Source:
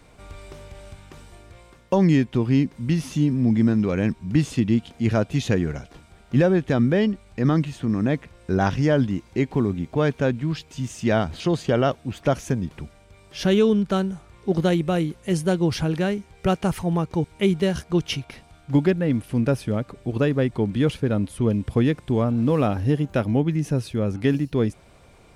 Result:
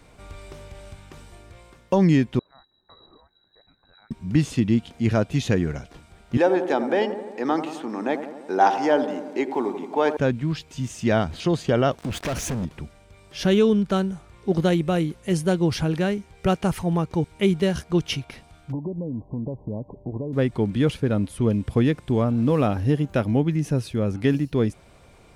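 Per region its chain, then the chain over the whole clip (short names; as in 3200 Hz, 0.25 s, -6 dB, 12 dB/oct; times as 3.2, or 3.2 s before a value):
2.39–4.11 inverse Chebyshev band-stop 150–830 Hz, stop band 80 dB + inverted band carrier 3900 Hz
6.37–10.17 HPF 300 Hz 24 dB/oct + bell 840 Hz +13.5 dB 0.31 oct + dark delay 86 ms, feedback 64%, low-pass 1200 Hz, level -9 dB
11.98–12.65 sample leveller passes 5 + compressor 5:1, threshold -27 dBFS
18.72–20.33 compressor 10:1, threshold -25 dBFS + brick-wall FIR low-pass 1100 Hz
whole clip: dry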